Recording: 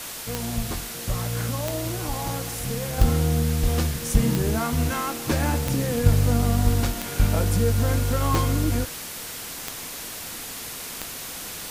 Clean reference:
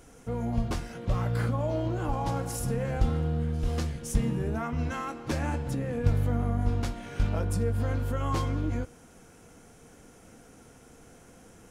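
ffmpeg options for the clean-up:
ffmpeg -i in.wav -af "adeclick=threshold=4,afwtdn=0.02,asetnsamples=nb_out_samples=441:pad=0,asendcmd='2.98 volume volume -6.5dB',volume=0dB" out.wav

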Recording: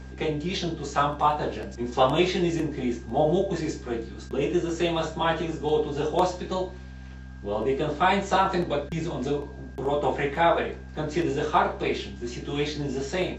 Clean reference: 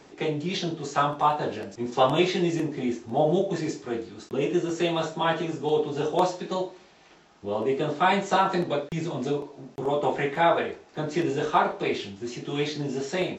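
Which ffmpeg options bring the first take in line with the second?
ffmpeg -i in.wav -af "bandreject=frequency=64.5:width_type=h:width=4,bandreject=frequency=129:width_type=h:width=4,bandreject=frequency=193.5:width_type=h:width=4,bandreject=frequency=258:width_type=h:width=4,bandreject=frequency=1600:width=30" out.wav

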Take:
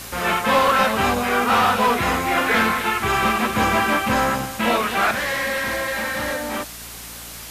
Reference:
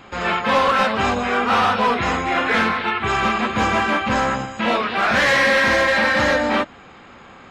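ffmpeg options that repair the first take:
ffmpeg -i in.wav -af "bandreject=frequency=57.5:width_type=h:width=4,bandreject=frequency=115:width_type=h:width=4,bandreject=frequency=172.5:width_type=h:width=4,bandreject=frequency=230:width_type=h:width=4,bandreject=frequency=287.5:width_type=h:width=4,afwtdn=0.018,asetnsamples=nb_out_samples=441:pad=0,asendcmd='5.11 volume volume 8dB',volume=0dB" out.wav

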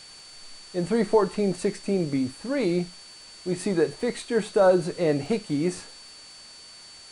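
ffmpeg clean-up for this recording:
ffmpeg -i in.wav -af "adeclick=threshold=4,bandreject=frequency=4500:width=30,afwtdn=0.0045" out.wav

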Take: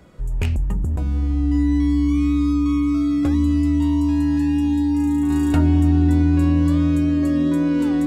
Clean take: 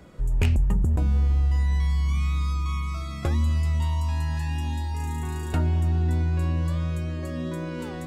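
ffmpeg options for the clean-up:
ffmpeg -i in.wav -af "bandreject=frequency=290:width=30,asetnsamples=nb_out_samples=441:pad=0,asendcmd='5.3 volume volume -5dB',volume=0dB" out.wav

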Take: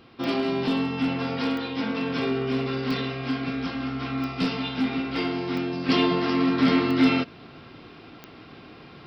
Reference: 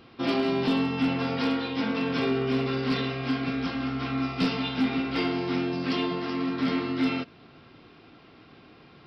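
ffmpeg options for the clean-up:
ffmpeg -i in.wav -af "adeclick=threshold=4,asetnsamples=nb_out_samples=441:pad=0,asendcmd='5.89 volume volume -6.5dB',volume=0dB" out.wav

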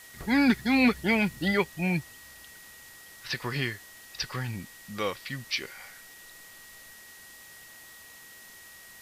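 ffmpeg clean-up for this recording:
ffmpeg -i in.wav -af "bandreject=frequency=1900:width=30,afwtdn=0.0032" out.wav

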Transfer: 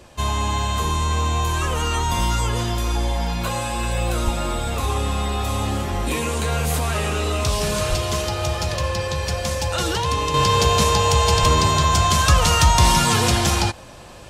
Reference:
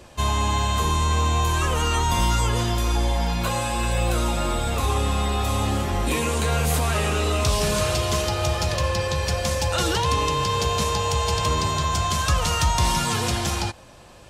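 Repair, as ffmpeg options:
ffmpeg -i in.wav -filter_complex "[0:a]asplit=3[link_01][link_02][link_03];[link_01]afade=type=out:start_time=4.24:duration=0.02[link_04];[link_02]highpass=frequency=140:width=0.5412,highpass=frequency=140:width=1.3066,afade=type=in:start_time=4.24:duration=0.02,afade=type=out:start_time=4.36:duration=0.02[link_05];[link_03]afade=type=in:start_time=4.36:duration=0.02[link_06];[link_04][link_05][link_06]amix=inputs=3:normalize=0,asplit=3[link_07][link_08][link_09];[link_07]afade=type=out:start_time=7.89:duration=0.02[link_10];[link_08]highpass=frequency=140:width=0.5412,highpass=frequency=140:width=1.3066,afade=type=in:start_time=7.89:duration=0.02,afade=type=out:start_time=8.01:duration=0.02[link_11];[link_09]afade=type=in:start_time=8.01:duration=0.02[link_12];[link_10][link_11][link_12]amix=inputs=3:normalize=0,asplit=3[link_13][link_14][link_15];[link_13]afade=type=out:start_time=11.4:duration=0.02[link_16];[link_14]highpass=frequency=140:width=0.5412,highpass=frequency=140:width=1.3066,afade=type=in:start_time=11.4:duration=0.02,afade=type=out:start_time=11.52:duration=0.02[link_17];[link_15]afade=type=in:start_time=11.52:duration=0.02[link_18];[link_16][link_17][link_18]amix=inputs=3:normalize=0,asetnsamples=nb_out_samples=441:pad=0,asendcmd='10.34 volume volume -6dB',volume=0dB" out.wav

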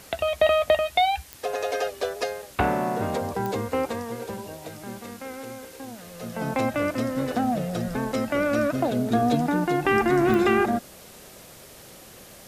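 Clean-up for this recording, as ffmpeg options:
ffmpeg -i in.wav -af "adeclick=threshold=4,afftdn=noise_reduction=23:noise_floor=-46" out.wav

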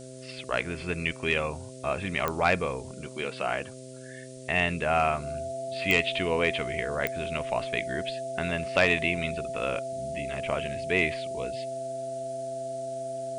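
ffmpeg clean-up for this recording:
ffmpeg -i in.wav -af "adeclick=threshold=4,bandreject=frequency=129.5:width_type=h:width=4,bandreject=frequency=259:width_type=h:width=4,bandreject=frequency=388.5:width_type=h:width=4,bandreject=frequency=518:width_type=h:width=4,bandreject=frequency=647.5:width_type=h:width=4,bandreject=frequency=670:width=30,afftdn=noise_reduction=30:noise_floor=-43" out.wav

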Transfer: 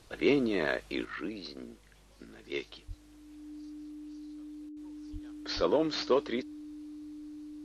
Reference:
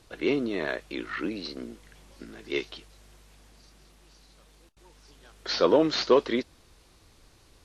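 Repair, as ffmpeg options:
ffmpeg -i in.wav -filter_complex "[0:a]bandreject=frequency=300:width=30,asplit=3[link_01][link_02][link_03];[link_01]afade=type=out:start_time=2.87:duration=0.02[link_04];[link_02]highpass=frequency=140:width=0.5412,highpass=frequency=140:width=1.3066,afade=type=in:start_time=2.87:duration=0.02,afade=type=out:start_time=2.99:duration=0.02[link_05];[link_03]afade=type=in:start_time=2.99:duration=0.02[link_06];[link_04][link_05][link_06]amix=inputs=3:normalize=0,asplit=3[link_07][link_08][link_09];[link_07]afade=type=out:start_time=5.12:duration=0.02[link_10];[link_08]highpass=frequency=140:width=0.5412,highpass=frequency=140:width=1.3066,afade=type=in:start_time=5.12:duration=0.02,afade=type=out:start_time=5.24:duration=0.02[link_11];[link_09]afade=type=in:start_time=5.24:duration=0.02[link_12];[link_10][link_11][link_12]amix=inputs=3:normalize=0,asplit=3[link_13][link_14][link_15];[link_13]afade=type=out:start_time=5.55:duration=0.02[link_16];[link_14]highpass=frequency=140:width=0.5412,highpass=frequency=140:width=1.3066,afade=type=in:start_time=5.55:duration=0.02,afade=type=out:start_time=5.67:duration=0.02[link_17];[link_15]afade=type=in:start_time=5.67:duration=0.02[link_18];[link_16][link_17][link_18]amix=inputs=3:normalize=0,asetnsamples=nb_out_samples=441:pad=0,asendcmd='1.05 volume volume 6.5dB',volume=0dB" out.wav

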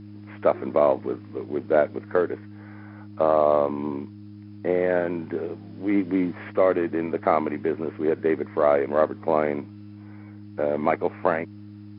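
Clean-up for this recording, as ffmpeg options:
ffmpeg -i in.wav -af "bandreject=frequency=103.4:width_type=h:width=4,bandreject=frequency=206.8:width_type=h:width=4,bandreject=frequency=310.2:width_type=h:width=4" out.wav

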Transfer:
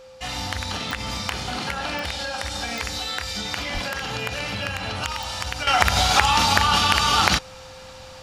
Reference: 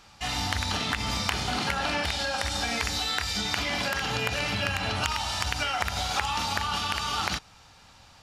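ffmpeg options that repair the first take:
ffmpeg -i in.wav -filter_complex "[0:a]adeclick=threshold=4,bandreject=frequency=520:width=30,asplit=3[link_01][link_02][link_03];[link_01]afade=type=out:start_time=3.73:duration=0.02[link_04];[link_02]highpass=frequency=140:width=0.5412,highpass=frequency=140:width=1.3066,afade=type=in:start_time=3.73:duration=0.02,afade=type=out:start_time=3.85:duration=0.02[link_05];[link_03]afade=type=in:start_time=3.85:duration=0.02[link_06];[link_04][link_05][link_06]amix=inputs=3:normalize=0,asetnsamples=nb_out_samples=441:pad=0,asendcmd='5.67 volume volume -10.5dB',volume=0dB" out.wav

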